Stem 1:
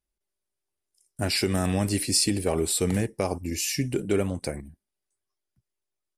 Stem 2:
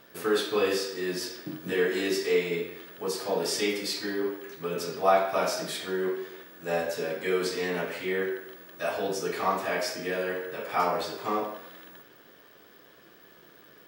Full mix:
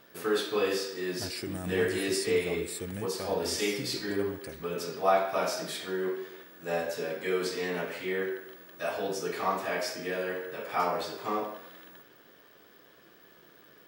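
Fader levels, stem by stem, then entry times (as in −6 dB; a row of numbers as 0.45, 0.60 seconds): −13.0, −2.5 decibels; 0.00, 0.00 seconds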